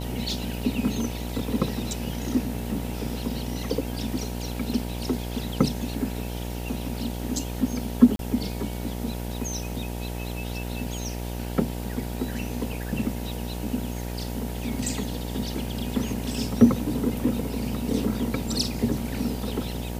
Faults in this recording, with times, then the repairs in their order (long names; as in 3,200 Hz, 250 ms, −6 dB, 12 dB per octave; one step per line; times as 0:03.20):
mains buzz 60 Hz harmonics 16 −32 dBFS
0:08.16–0:08.19: drop-out 32 ms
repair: hum removal 60 Hz, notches 16
repair the gap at 0:08.16, 32 ms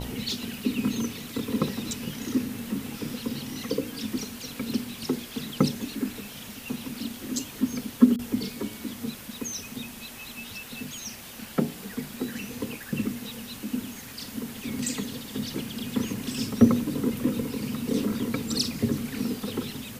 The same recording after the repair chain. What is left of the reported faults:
none of them is left